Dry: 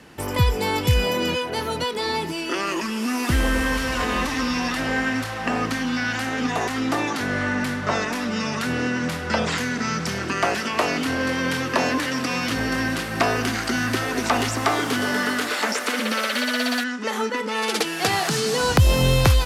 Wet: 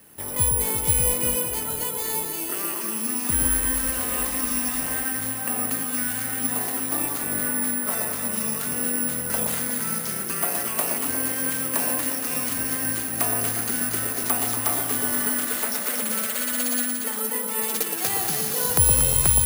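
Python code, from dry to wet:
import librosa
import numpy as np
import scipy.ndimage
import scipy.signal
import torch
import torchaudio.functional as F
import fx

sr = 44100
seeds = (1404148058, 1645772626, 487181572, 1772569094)

p1 = x + fx.echo_alternate(x, sr, ms=117, hz=1000.0, feedback_pct=72, wet_db=-3, dry=0)
p2 = (np.kron(p1[::4], np.eye(4)[0]) * 4)[:len(p1)]
y = p2 * 10.0 ** (-10.0 / 20.0)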